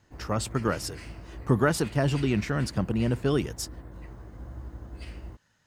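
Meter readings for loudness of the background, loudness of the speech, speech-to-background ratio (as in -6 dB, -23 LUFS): -43.5 LUFS, -28.0 LUFS, 15.5 dB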